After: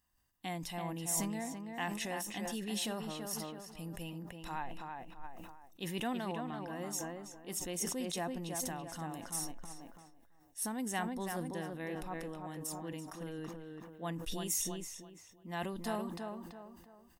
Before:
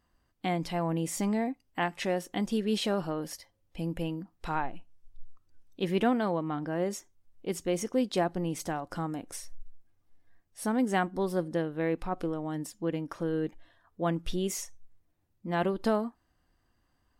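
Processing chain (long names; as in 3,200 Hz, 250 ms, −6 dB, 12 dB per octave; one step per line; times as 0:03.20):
first-order pre-emphasis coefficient 0.8
notch filter 4,600 Hz, Q 12
comb filter 1.1 ms, depth 33%
on a send: tape delay 332 ms, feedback 41%, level −4 dB, low-pass 2,400 Hz
on the sum: level that may fall only so fast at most 38 dB per second
level +2 dB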